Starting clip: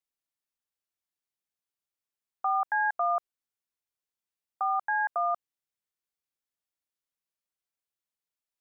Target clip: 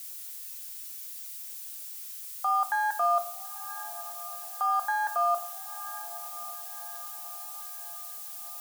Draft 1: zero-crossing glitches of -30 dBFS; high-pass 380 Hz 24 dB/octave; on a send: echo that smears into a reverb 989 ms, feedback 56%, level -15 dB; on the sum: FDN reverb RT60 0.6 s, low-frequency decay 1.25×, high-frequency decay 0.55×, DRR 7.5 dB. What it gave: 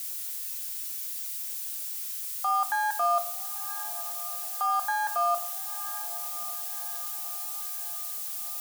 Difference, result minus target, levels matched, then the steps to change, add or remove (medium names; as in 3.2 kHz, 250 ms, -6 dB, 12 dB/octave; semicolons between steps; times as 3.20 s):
zero-crossing glitches: distortion +6 dB
change: zero-crossing glitches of -36 dBFS